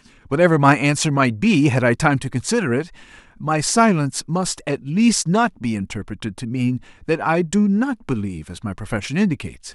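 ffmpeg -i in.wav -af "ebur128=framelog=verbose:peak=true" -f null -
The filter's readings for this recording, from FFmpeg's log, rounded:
Integrated loudness:
  I:         -19.2 LUFS
  Threshold: -29.6 LUFS
Loudness range:
  LRA:         4.6 LU
  Threshold: -40.0 LUFS
  LRA low:   -22.3 LUFS
  LRA high:  -17.7 LUFS
True peak:
  Peak:       -1.6 dBFS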